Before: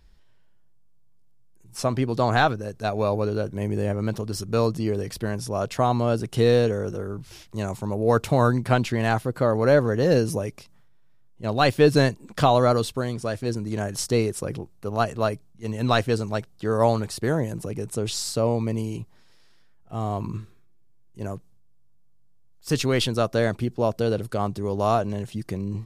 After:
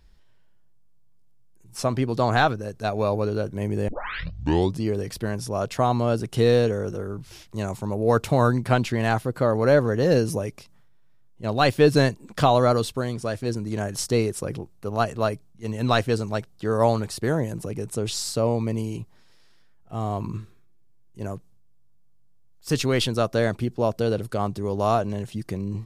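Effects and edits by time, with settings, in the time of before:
0:03.88: tape start 0.93 s

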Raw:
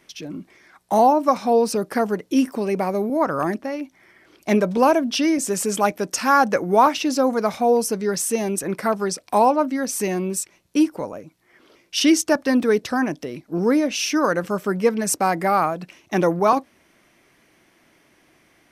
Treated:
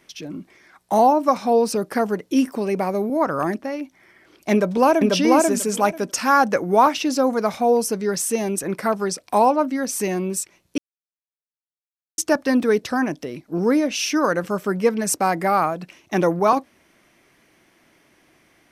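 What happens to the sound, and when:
0:04.52–0:05.12: delay throw 490 ms, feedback 15%, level −1 dB
0:10.78–0:12.18: silence

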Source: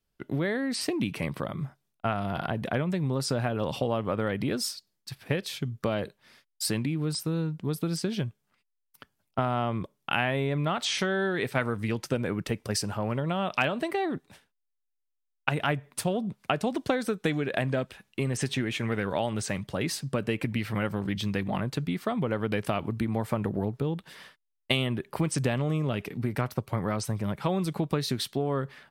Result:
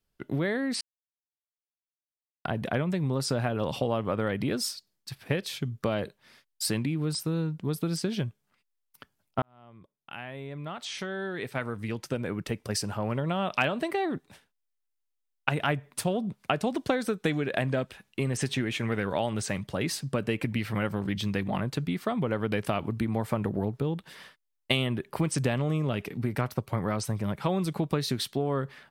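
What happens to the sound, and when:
0:00.81–0:02.45: silence
0:09.42–0:13.23: fade in

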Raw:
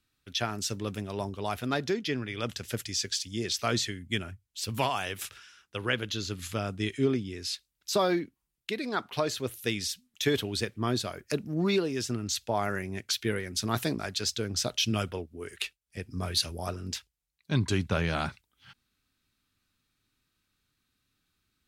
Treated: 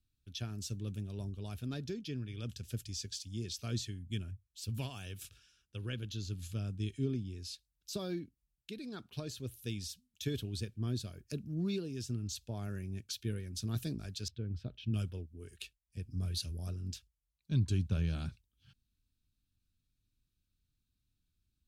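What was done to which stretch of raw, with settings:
0:00.68–0:01.37: notch filter 5,100 Hz
0:14.28–0:14.94: high-frequency loss of the air 480 metres
whole clip: guitar amp tone stack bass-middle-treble 10-0-1; notch filter 2,000 Hz, Q 5.2; level +10 dB

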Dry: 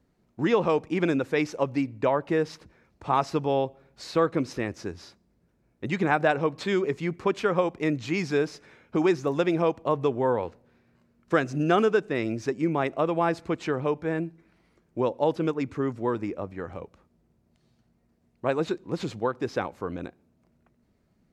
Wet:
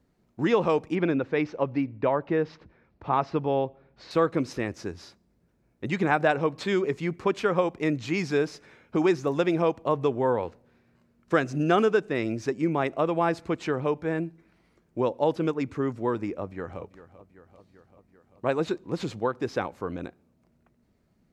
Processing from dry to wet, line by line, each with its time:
0:00.95–0:04.11: high-frequency loss of the air 220 metres
0:16.40–0:16.82: delay throw 390 ms, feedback 70%, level −15 dB

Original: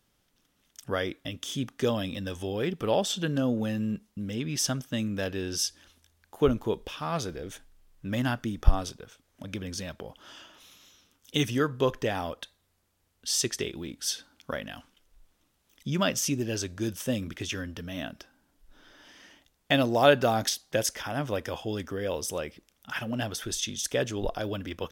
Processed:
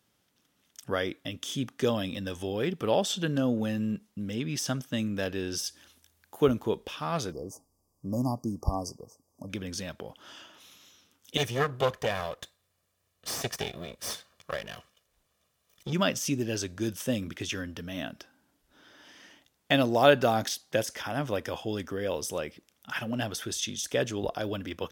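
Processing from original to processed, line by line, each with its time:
0:05.60–0:06.61: high-shelf EQ 9,700 Hz +8.5 dB
0:07.32–0:09.50: linear-phase brick-wall band-stop 1,200–4,600 Hz
0:11.37–0:15.93: lower of the sound and its delayed copy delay 1.7 ms
whole clip: de-essing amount 55%; high-pass filter 88 Hz

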